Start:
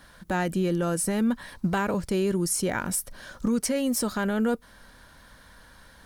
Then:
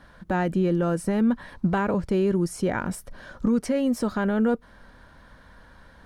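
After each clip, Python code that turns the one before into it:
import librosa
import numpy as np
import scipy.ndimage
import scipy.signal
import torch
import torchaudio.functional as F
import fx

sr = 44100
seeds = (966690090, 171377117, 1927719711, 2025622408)

y = fx.lowpass(x, sr, hz=1500.0, slope=6)
y = y * 10.0 ** (3.0 / 20.0)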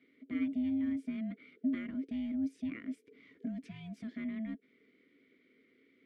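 y = x * np.sin(2.0 * np.pi * 440.0 * np.arange(len(x)) / sr)
y = fx.vowel_filter(y, sr, vowel='i')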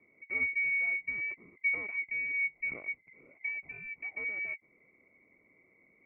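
y = fx.freq_invert(x, sr, carrier_hz=2500)
y = y * 10.0 ** (2.0 / 20.0)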